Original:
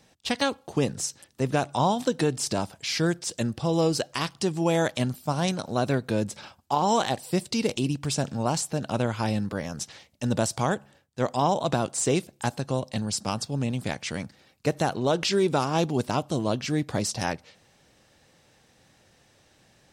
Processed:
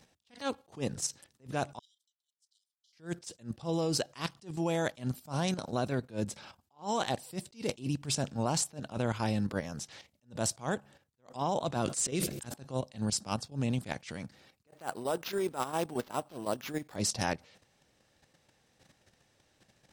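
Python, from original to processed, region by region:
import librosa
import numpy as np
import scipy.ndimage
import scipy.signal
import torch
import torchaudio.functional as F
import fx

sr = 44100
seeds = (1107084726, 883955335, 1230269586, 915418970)

y = fx.chain(x, sr, fx.transient(attack_db=10, sustain_db=-5),
    fx.brickwall_highpass(low_hz=2900.0),
    fx.upward_expand(threshold_db=-44.0, expansion=2.5), at=(1.79, 2.93))
y = fx.chain(y, sr, fx.peak_eq(hz=820.0, db=-8.5, octaves=0.65),
    fx.auto_swell(attack_ms=126.0),
    fx.sustainer(db_per_s=60.0), at=(11.82, 12.54))
y = fx.chain(y, sr, fx.highpass(hz=520.0, slope=6),
    fx.dynamic_eq(hz=3600.0, q=0.98, threshold_db=-45.0, ratio=4.0, max_db=-7),
    fx.sample_hold(seeds[0], rate_hz=8800.0, jitter_pct=0), at=(14.67, 16.96))
y = fx.level_steps(y, sr, step_db=10)
y = fx.attack_slew(y, sr, db_per_s=240.0)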